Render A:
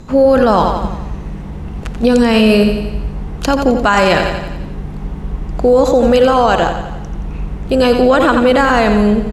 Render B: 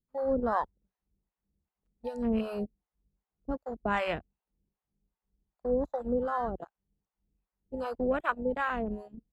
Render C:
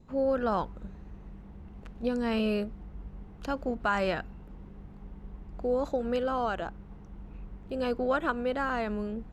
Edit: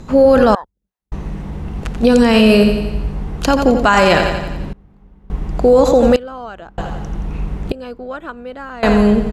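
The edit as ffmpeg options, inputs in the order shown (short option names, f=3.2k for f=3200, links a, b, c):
-filter_complex "[2:a]asplit=3[a][b][c];[0:a]asplit=5[d][e][f][g][h];[d]atrim=end=0.552[i];[1:a]atrim=start=0.548:end=1.122[j];[e]atrim=start=1.118:end=4.732[k];[a]atrim=start=4.728:end=5.302[l];[f]atrim=start=5.298:end=6.162[m];[b]atrim=start=6.158:end=6.782[n];[g]atrim=start=6.778:end=7.722[o];[c]atrim=start=7.718:end=8.832[p];[h]atrim=start=8.828[q];[i][j]acrossfade=d=0.004:c1=hsin:c2=hsin[r];[r][k]acrossfade=d=0.004:c1=hsin:c2=hsin[s];[s][l]acrossfade=d=0.004:c1=hsin:c2=hsin[t];[t][m]acrossfade=d=0.004:c1=hsin:c2=hsin[u];[u][n]acrossfade=d=0.004:c1=hsin:c2=hsin[v];[v][o]acrossfade=d=0.004:c1=hsin:c2=hsin[w];[w][p]acrossfade=d=0.004:c1=hsin:c2=hsin[x];[x][q]acrossfade=d=0.004:c1=hsin:c2=hsin"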